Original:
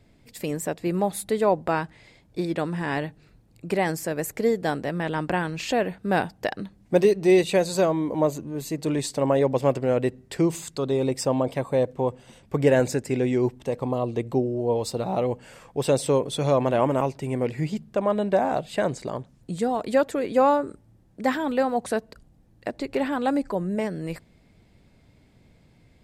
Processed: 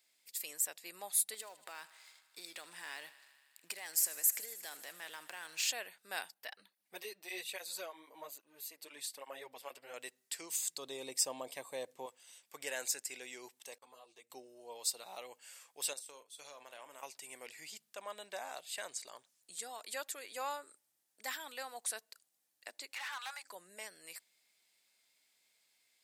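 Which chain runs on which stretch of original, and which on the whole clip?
1.34–5.7 compressor 12:1, threshold -28 dBFS + sample leveller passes 1 + thinning echo 78 ms, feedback 80%, high-pass 430 Hz, level -16.5 dB
6.34–9.94 bell 6900 Hz -11 dB 0.9 oct + tape flanging out of phase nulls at 1.2 Hz, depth 7.8 ms
10.58–12.06 low shelf 500 Hz +12 dB + notch 1400 Hz, Q 7.9
13.78–14.3 expander -29 dBFS + compressor 3:1, threshold -28 dBFS + ensemble effect
15.93–17.03 gate -26 dBFS, range -18 dB + compressor 4:1, threshold -28 dBFS + doubler 41 ms -12 dB
22.94–23.43 steep high-pass 850 Hz + overdrive pedal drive 21 dB, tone 1300 Hz, clips at -18 dBFS
whole clip: HPF 690 Hz 6 dB/oct; differentiator; gain +1 dB

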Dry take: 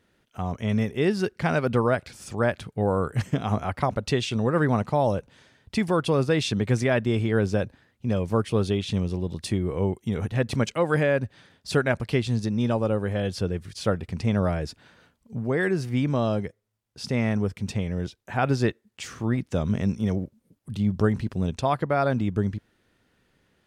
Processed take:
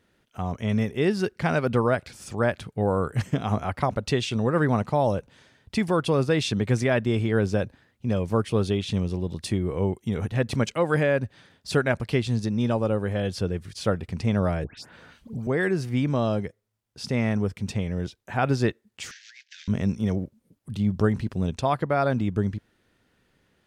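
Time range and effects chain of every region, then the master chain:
14.64–15.47 dispersion highs, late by 0.14 s, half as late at 2000 Hz + three-band squash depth 70%
19.11–19.68 CVSD 32 kbps + steep high-pass 1600 Hz 96 dB/oct + negative-ratio compressor -47 dBFS
whole clip: dry

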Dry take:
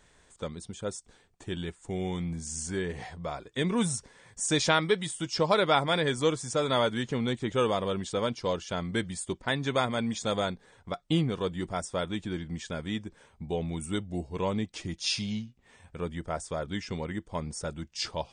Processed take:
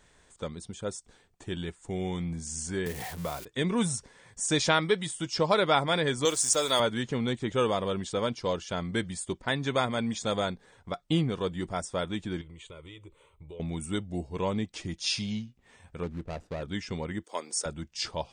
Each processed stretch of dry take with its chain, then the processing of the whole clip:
2.86–3.45 switching spikes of -32 dBFS + three-band squash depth 70%
6.25–6.8 tone controls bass -11 dB, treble +15 dB + sample gate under -38.5 dBFS
12.41–13.6 fixed phaser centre 1100 Hz, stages 8 + compressor 4:1, threshold -43 dBFS
16.03–16.63 median filter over 41 samples + LPF 8000 Hz
17.24–17.66 HPF 320 Hz 24 dB/oct + high shelf 3100 Hz +10.5 dB
whole clip: dry

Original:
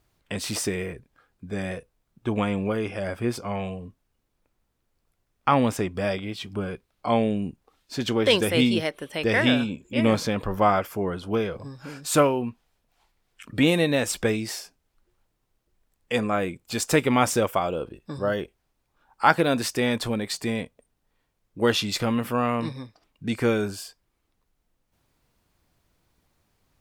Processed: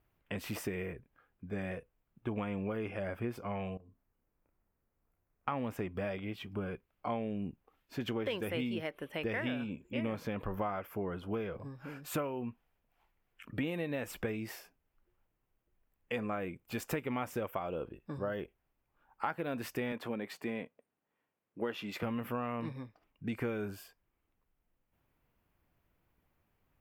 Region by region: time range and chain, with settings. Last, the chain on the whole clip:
3.77–5.48 compressor 10:1, threshold -50 dBFS + bell 3700 Hz -12 dB 1 oct + doubler 31 ms -4 dB
19.92–22.03 HPF 200 Hz + high shelf 5200 Hz -6.5 dB
whole clip: band shelf 6000 Hz -12 dB; compressor 6:1, threshold -26 dBFS; gain -6.5 dB

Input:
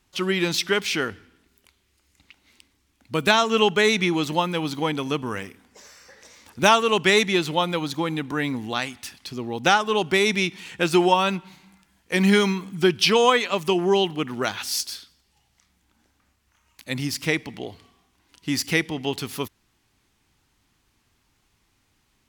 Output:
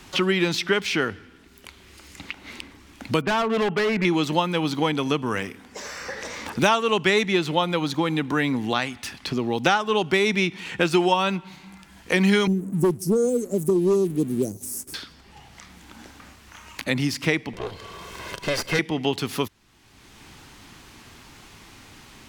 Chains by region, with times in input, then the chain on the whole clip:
3.21–4.05 LPF 2100 Hz 24 dB/oct + overloaded stage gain 22 dB
12.47–14.94 inverse Chebyshev band-stop 1100–3600 Hz, stop band 60 dB + sample leveller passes 1 + hard clip -14 dBFS
17.53–18.79 minimum comb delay 1.9 ms + upward compressor, threshold -41 dBFS
whole clip: high shelf 7900 Hz -7 dB; three-band squash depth 70%; gain +1 dB

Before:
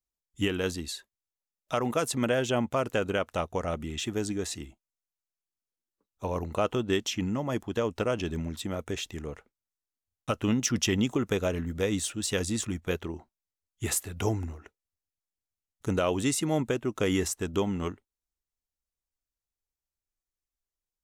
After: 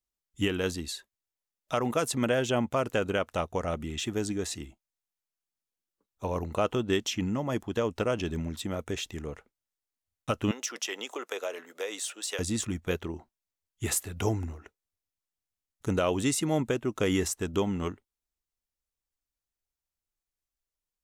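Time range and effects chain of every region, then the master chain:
10.51–12.39 HPF 460 Hz 24 dB/oct + compressor 2.5:1, threshold -30 dBFS
whole clip: dry

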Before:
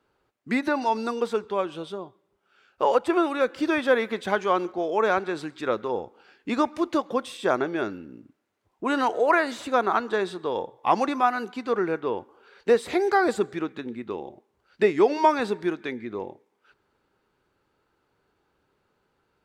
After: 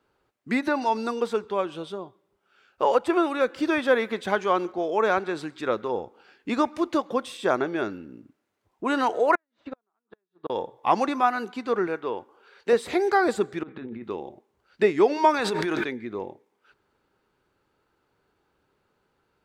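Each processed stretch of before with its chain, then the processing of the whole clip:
9.35–10.5 flipped gate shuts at -19 dBFS, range -34 dB + air absorption 250 m + upward expander 2.5:1, over -44 dBFS
11.87–12.73 HPF 50 Hz + low shelf 330 Hz -7 dB
13.63–14.04 negative-ratio compressor -37 dBFS + air absorption 320 m
15.34–15.84 bell 190 Hz -7.5 dB 2.5 oct + fast leveller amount 100%
whole clip: dry

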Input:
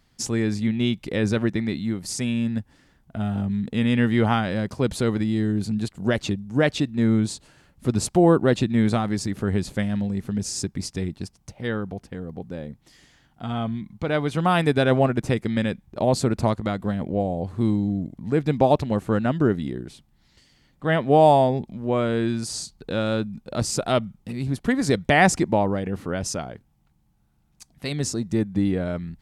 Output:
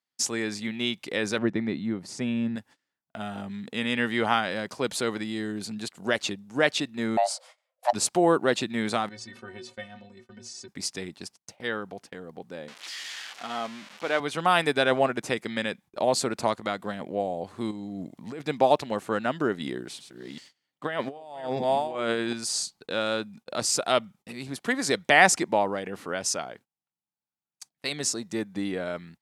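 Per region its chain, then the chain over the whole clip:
1.38–2.56 LPF 1400 Hz 6 dB/oct + low shelf 380 Hz +9 dB
7.17–7.93 high shelf 9800 Hz -6 dB + frequency shift +480 Hz
9.09–10.68 LPF 5100 Hz + metallic resonator 110 Hz, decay 0.26 s, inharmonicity 0.03 + sustainer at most 120 dB/s
12.68–14.2 switching spikes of -20.5 dBFS + BPF 230–3100 Hz
17.71–18.42 negative-ratio compressor -26 dBFS + bell 1600 Hz -4.5 dB 0.26 oct
19.6–22.33 reverse delay 0.392 s, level -8 dB + negative-ratio compressor -24 dBFS, ratio -0.5
whole clip: weighting filter A; gate -50 dBFS, range -24 dB; high shelf 6800 Hz +6.5 dB

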